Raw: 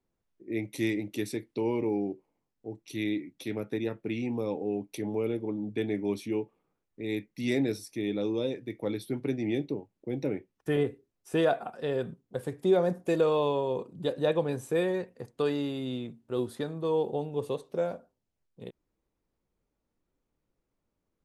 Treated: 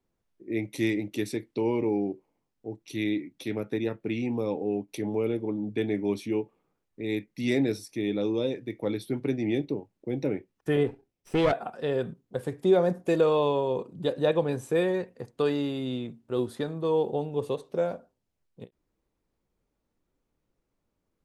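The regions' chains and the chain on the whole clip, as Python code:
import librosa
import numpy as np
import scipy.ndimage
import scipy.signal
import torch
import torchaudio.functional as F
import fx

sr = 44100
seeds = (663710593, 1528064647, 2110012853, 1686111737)

y = fx.chain(x, sr, fx.lower_of_two(delay_ms=0.37),
    fx.high_shelf(hz=7100.0, db=-6.0), at=(10.87, 11.52))
y = fx.high_shelf(y, sr, hz=10000.0, db=-5.5)
y = fx.end_taper(y, sr, db_per_s=470.0)
y = y * librosa.db_to_amplitude(2.5)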